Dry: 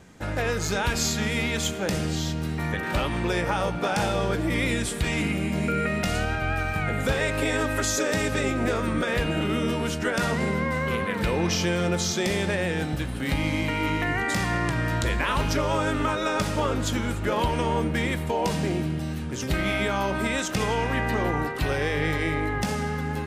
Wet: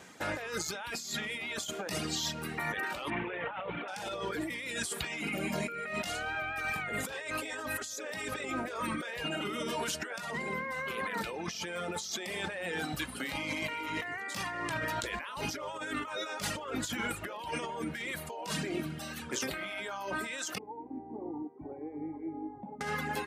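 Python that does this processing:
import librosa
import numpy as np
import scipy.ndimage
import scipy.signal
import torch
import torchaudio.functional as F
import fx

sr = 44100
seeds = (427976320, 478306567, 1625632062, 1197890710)

y = fx.delta_mod(x, sr, bps=16000, step_db=-28.0, at=(3.1, 3.88))
y = fx.formant_cascade(y, sr, vowel='u', at=(20.58, 22.81))
y = fx.highpass(y, sr, hz=620.0, slope=6)
y = fx.dereverb_blind(y, sr, rt60_s=1.5)
y = fx.over_compress(y, sr, threshold_db=-37.0, ratio=-1.0)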